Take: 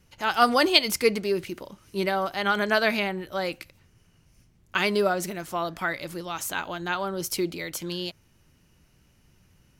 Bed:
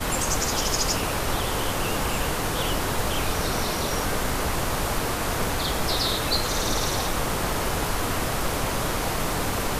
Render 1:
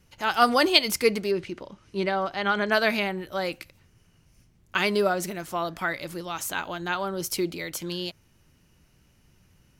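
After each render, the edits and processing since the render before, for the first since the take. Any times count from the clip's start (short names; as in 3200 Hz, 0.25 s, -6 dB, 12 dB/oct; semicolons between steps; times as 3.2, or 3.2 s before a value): 1.31–2.72 air absorption 81 m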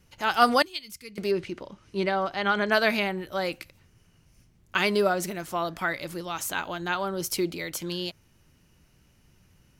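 0.62–1.18 passive tone stack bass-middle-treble 6-0-2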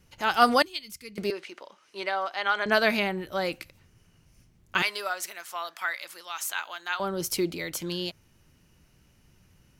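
1.3–2.66 HPF 650 Hz; 4.82–7 HPF 1100 Hz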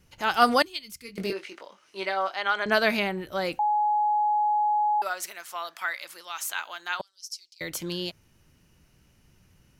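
1.02–2.36 doubler 21 ms -5.5 dB; 3.59–5.02 bleep 840 Hz -20.5 dBFS; 7.01–7.61 ladder band-pass 5800 Hz, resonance 65%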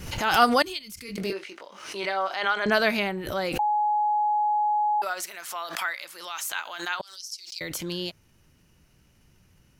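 backwards sustainer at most 67 dB/s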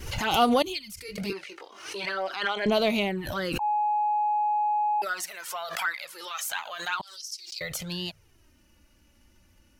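envelope flanger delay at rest 3.6 ms, full sweep at -21 dBFS; in parallel at -8 dB: soft clip -25.5 dBFS, distortion -11 dB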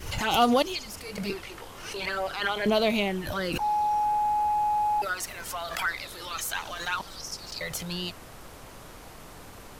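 add bed -20 dB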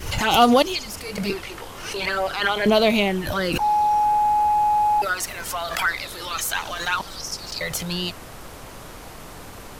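gain +6.5 dB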